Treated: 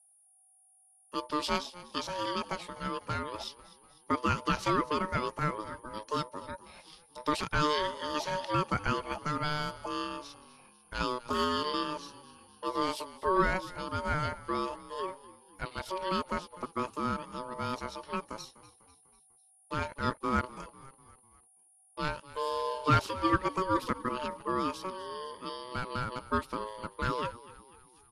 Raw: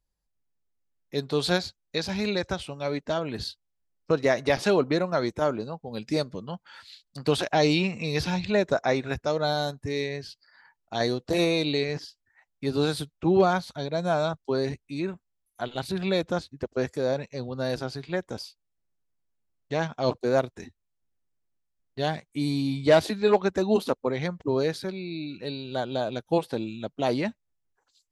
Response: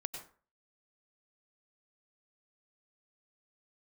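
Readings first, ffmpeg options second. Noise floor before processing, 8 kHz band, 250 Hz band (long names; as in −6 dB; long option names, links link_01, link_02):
−79 dBFS, −4.5 dB, −8.0 dB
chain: -filter_complex "[0:a]aeval=exprs='val(0)+0.00178*sin(2*PI*10000*n/s)':channel_layout=same,aeval=exprs='val(0)*sin(2*PI*750*n/s)':channel_layout=same,asplit=5[link_01][link_02][link_03][link_04][link_05];[link_02]adelay=248,afreqshift=-39,volume=-18dB[link_06];[link_03]adelay=496,afreqshift=-78,volume=-23.7dB[link_07];[link_04]adelay=744,afreqshift=-117,volume=-29.4dB[link_08];[link_05]adelay=992,afreqshift=-156,volume=-35dB[link_09];[link_01][link_06][link_07][link_08][link_09]amix=inputs=5:normalize=0,volume=-3.5dB"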